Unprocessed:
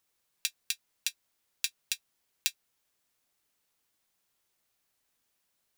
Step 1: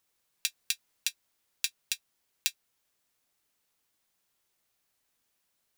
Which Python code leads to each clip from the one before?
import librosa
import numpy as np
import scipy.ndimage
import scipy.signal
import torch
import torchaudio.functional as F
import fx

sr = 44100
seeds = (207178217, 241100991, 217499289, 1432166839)

y = fx.rider(x, sr, range_db=10, speed_s=0.5)
y = y * librosa.db_to_amplitude(2.5)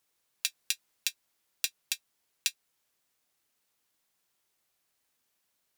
y = fx.low_shelf(x, sr, hz=92.0, db=-5.0)
y = fx.wow_flutter(y, sr, seeds[0], rate_hz=2.1, depth_cents=24.0)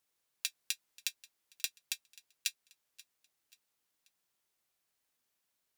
y = fx.echo_feedback(x, sr, ms=534, feedback_pct=42, wet_db=-21.5)
y = y * librosa.db_to_amplitude(-5.0)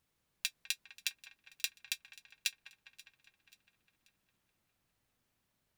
y = fx.bass_treble(x, sr, bass_db=14, treble_db=-6)
y = fx.echo_wet_lowpass(y, sr, ms=203, feedback_pct=68, hz=1400.0, wet_db=-6)
y = y * librosa.db_to_amplitude(3.5)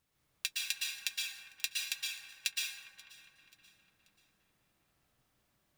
y = fx.rev_plate(x, sr, seeds[1], rt60_s=1.0, hf_ratio=0.55, predelay_ms=105, drr_db=-3.5)